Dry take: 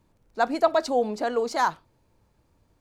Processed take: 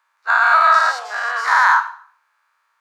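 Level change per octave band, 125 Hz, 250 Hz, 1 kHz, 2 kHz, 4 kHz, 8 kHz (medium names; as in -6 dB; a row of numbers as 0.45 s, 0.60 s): under -40 dB, under -30 dB, +12.0 dB, +19.5 dB, +8.0 dB, +6.0 dB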